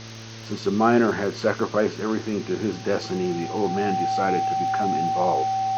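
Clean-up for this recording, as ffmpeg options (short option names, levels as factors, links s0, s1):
-af "adeclick=t=4,bandreject=f=112:t=h:w=4,bandreject=f=224:t=h:w=4,bandreject=f=336:t=h:w=4,bandreject=f=448:t=h:w=4,bandreject=f=560:t=h:w=4,bandreject=f=770:w=30,afwtdn=0.013"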